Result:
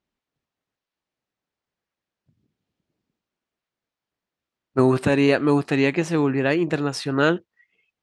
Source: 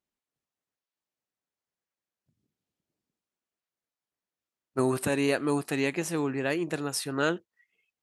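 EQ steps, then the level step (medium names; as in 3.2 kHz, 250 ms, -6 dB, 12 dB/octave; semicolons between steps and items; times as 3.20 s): low-pass 4.6 kHz 12 dB/octave; bass shelf 240 Hz +4.5 dB; +7.0 dB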